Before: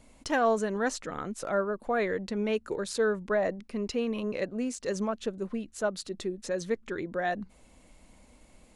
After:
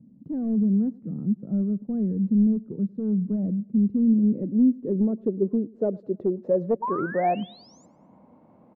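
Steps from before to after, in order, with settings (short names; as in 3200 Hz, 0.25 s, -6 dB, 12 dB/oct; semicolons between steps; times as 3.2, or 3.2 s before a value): HPF 130 Hz 24 dB/oct; low shelf 390 Hz +12 dB; hard clip -19 dBFS, distortion -16 dB; painted sound rise, 6.82–7.86, 910–7500 Hz -24 dBFS; low-pass sweep 200 Hz -> 960 Hz, 3.8–7.65; feedback echo 0.104 s, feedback 43%, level -24 dB; gain -1.5 dB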